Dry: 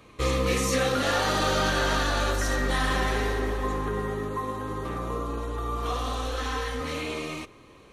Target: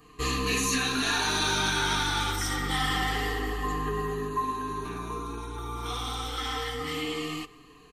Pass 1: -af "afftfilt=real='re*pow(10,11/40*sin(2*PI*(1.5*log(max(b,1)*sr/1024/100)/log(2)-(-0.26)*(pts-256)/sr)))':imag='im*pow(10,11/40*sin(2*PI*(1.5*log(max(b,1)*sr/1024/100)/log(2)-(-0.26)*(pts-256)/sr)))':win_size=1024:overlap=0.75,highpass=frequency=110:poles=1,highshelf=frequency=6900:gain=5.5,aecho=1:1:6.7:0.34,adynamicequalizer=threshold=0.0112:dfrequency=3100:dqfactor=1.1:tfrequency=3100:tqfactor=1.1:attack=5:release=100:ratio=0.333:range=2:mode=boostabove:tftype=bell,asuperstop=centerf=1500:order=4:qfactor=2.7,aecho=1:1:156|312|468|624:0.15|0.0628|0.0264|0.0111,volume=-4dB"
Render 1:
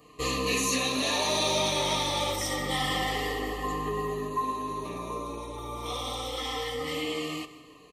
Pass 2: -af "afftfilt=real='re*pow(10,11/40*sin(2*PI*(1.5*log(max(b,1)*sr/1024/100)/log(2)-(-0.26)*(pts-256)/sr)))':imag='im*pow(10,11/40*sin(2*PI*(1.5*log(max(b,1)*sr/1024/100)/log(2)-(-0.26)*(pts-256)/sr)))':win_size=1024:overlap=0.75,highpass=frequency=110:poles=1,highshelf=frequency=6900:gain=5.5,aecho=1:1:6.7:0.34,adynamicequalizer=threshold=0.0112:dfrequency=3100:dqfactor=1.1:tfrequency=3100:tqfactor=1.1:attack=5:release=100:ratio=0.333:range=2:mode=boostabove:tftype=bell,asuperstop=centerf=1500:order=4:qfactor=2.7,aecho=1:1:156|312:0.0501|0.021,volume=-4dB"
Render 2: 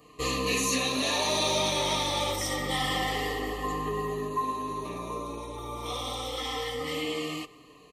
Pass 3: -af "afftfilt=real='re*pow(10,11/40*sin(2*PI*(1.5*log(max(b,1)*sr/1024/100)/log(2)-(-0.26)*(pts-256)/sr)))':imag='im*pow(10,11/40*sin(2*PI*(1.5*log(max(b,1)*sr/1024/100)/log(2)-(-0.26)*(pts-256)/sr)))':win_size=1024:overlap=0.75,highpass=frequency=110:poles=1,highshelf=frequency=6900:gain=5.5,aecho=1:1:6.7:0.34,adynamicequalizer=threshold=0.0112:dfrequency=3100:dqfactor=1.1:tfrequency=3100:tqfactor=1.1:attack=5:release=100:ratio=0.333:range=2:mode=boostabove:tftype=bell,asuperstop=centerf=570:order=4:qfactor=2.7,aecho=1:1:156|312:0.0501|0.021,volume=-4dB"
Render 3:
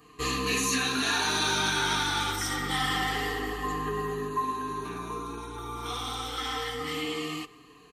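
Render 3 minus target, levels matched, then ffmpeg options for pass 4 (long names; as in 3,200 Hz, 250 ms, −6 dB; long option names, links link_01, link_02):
125 Hz band −3.0 dB
-af "afftfilt=real='re*pow(10,11/40*sin(2*PI*(1.5*log(max(b,1)*sr/1024/100)/log(2)-(-0.26)*(pts-256)/sr)))':imag='im*pow(10,11/40*sin(2*PI*(1.5*log(max(b,1)*sr/1024/100)/log(2)-(-0.26)*(pts-256)/sr)))':win_size=1024:overlap=0.75,highshelf=frequency=6900:gain=5.5,aecho=1:1:6.7:0.34,adynamicequalizer=threshold=0.0112:dfrequency=3100:dqfactor=1.1:tfrequency=3100:tqfactor=1.1:attack=5:release=100:ratio=0.333:range=2:mode=boostabove:tftype=bell,asuperstop=centerf=570:order=4:qfactor=2.7,aecho=1:1:156|312:0.0501|0.021,volume=-4dB"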